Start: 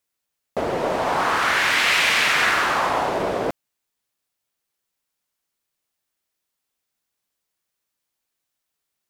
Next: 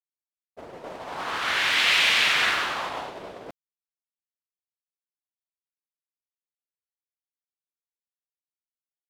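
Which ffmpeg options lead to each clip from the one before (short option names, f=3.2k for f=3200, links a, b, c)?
-af "adynamicequalizer=threshold=0.0178:dfrequency=3400:dqfactor=1.2:tfrequency=3400:tqfactor=1.2:attack=5:release=100:ratio=0.375:range=4:mode=boostabove:tftype=bell,agate=range=-33dB:threshold=-14dB:ratio=3:detection=peak,volume=-6dB"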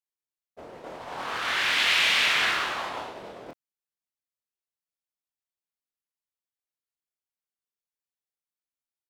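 -filter_complex "[0:a]asplit=2[a][b];[b]adelay=25,volume=-5dB[c];[a][c]amix=inputs=2:normalize=0,volume=-3dB"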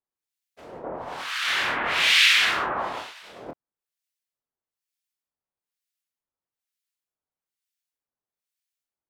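-filter_complex "[0:a]acrossover=split=1500[a][b];[a]aeval=exprs='val(0)*(1-1/2+1/2*cos(2*PI*1.1*n/s))':c=same[c];[b]aeval=exprs='val(0)*(1-1/2-1/2*cos(2*PI*1.1*n/s))':c=same[d];[c][d]amix=inputs=2:normalize=0,volume=7.5dB"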